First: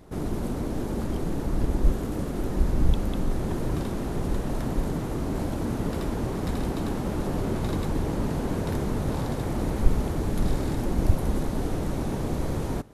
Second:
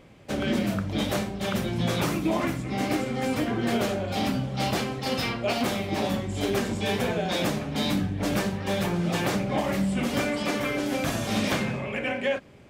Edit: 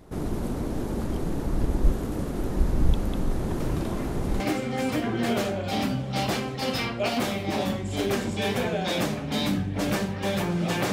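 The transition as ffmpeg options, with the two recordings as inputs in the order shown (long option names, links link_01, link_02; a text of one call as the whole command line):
ffmpeg -i cue0.wav -i cue1.wav -filter_complex "[1:a]asplit=2[link_01][link_02];[0:a]apad=whole_dur=10.92,atrim=end=10.92,atrim=end=4.402[link_03];[link_02]atrim=start=2.838:end=9.36[link_04];[link_01]atrim=start=2.04:end=2.84,asetpts=PTS-STARTPTS,volume=-14dB,afade=type=in:duration=0.004:curve=hsin,afade=type=out:start_time=0.796:duration=0.004:curve=hsin,adelay=3600[link_05];[link_03][link_04]acrossfade=duration=0.004:curve1=hsin:curve2=hsin[link_06];[link_06][link_05]amix=inputs=2:normalize=0" out.wav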